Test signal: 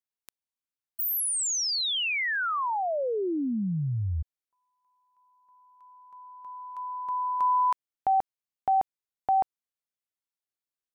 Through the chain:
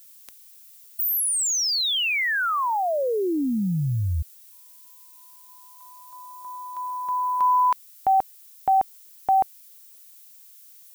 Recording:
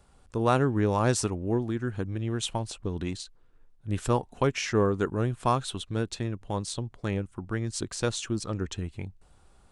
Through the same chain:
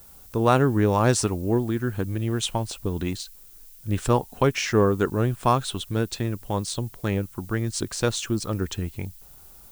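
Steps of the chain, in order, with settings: added noise violet -54 dBFS; gain +4.5 dB

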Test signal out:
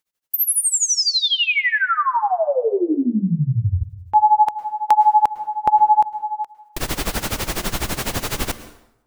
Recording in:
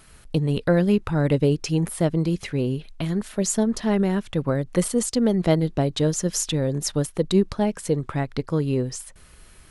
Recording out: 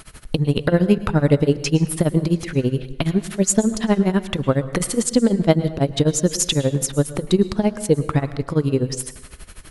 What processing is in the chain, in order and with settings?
in parallel at +3 dB: compressor, threshold -28 dBFS; on the sum: tremolo 12 Hz, depth 93%; plate-style reverb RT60 0.83 s, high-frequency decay 0.75×, pre-delay 95 ms, DRR 14 dB; gain +4 dB

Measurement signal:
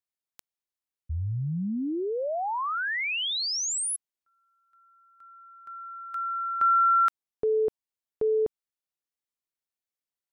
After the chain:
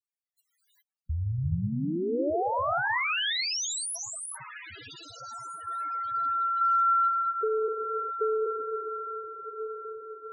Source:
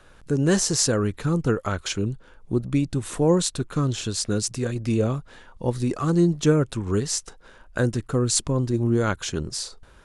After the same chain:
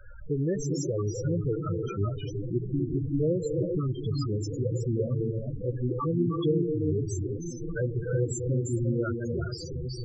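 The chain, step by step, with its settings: bell 220 Hz -7.5 dB 1.2 oct; compressor 2:1, threshold -42 dBFS; on a send: diffused feedback echo 1.391 s, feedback 47%, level -9 dB; on the sum: non-linear reverb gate 0.43 s rising, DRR 0 dB; loudest bins only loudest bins 8; gain +8 dB

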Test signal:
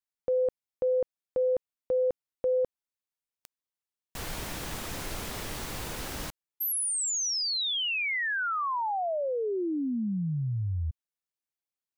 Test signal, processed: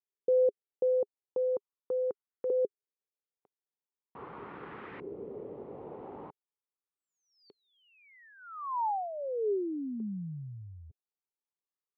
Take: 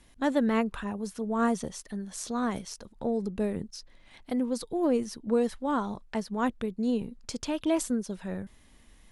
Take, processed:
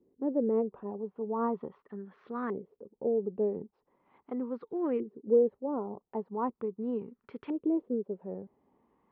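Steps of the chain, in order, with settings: LFO low-pass saw up 0.4 Hz 410–1800 Hz; speaker cabinet 170–3400 Hz, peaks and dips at 410 Hz +8 dB, 650 Hz -7 dB, 1600 Hz -7 dB; gain -6.5 dB

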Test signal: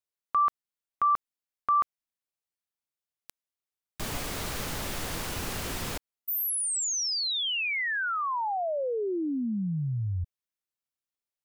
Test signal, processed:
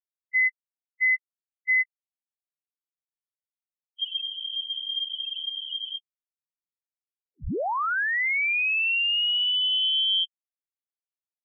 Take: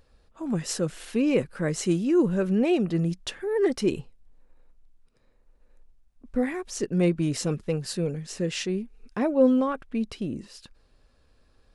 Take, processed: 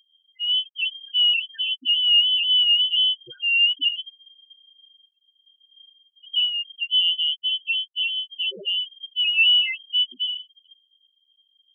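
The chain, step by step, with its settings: sample leveller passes 2; loudest bins only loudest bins 2; inverted band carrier 3200 Hz

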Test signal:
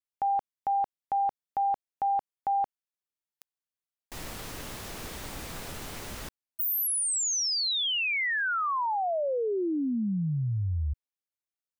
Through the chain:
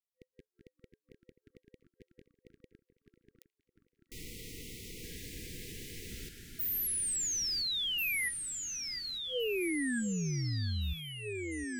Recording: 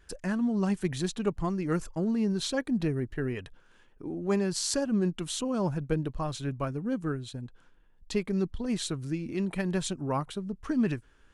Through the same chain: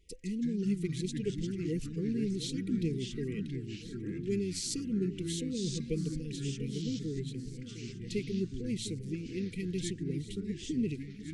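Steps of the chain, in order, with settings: FFT band-reject 510–1900 Hz; echoes that change speed 0.143 s, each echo -3 st, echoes 3, each echo -6 dB; echo with dull and thin repeats by turns 0.708 s, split 2100 Hz, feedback 69%, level -13 dB; gain -5.5 dB

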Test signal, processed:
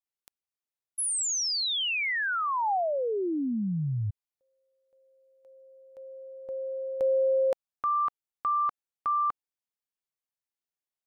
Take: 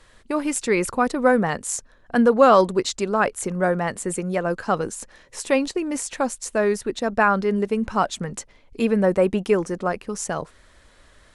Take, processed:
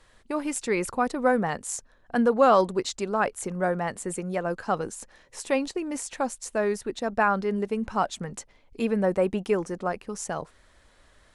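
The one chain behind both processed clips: bell 790 Hz +3 dB 0.47 oct; gain -5.5 dB

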